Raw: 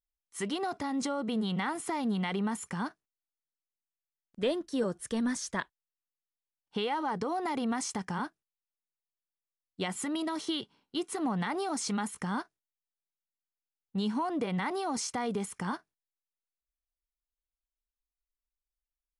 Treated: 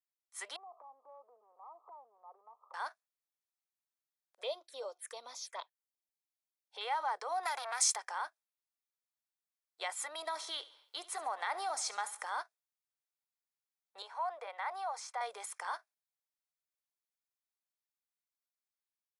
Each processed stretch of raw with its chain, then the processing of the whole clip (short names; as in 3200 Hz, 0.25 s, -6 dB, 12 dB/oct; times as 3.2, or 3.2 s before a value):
0.56–2.74 switching spikes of -31 dBFS + brick-wall FIR low-pass 1300 Hz + compressor 5:1, threshold -47 dBFS
4.41–6.81 envelope phaser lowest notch 200 Hz, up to 1700 Hz, full sweep at -30.5 dBFS + notch 340 Hz, Q 8.6
7.43–7.96 high shelf 2500 Hz +11 dB + core saturation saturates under 2400 Hz
10.18–12.41 low shelf 240 Hz +7.5 dB + feedback echo 70 ms, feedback 44%, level -17 dB + mismatched tape noise reduction encoder only
14.02–15.21 HPF 470 Hz 24 dB/oct + high shelf 2700 Hz -12 dB
whole clip: steep high-pass 570 Hz 36 dB/oct; notch 2900 Hz, Q 7.1; AGC gain up to 3.5 dB; gain -5 dB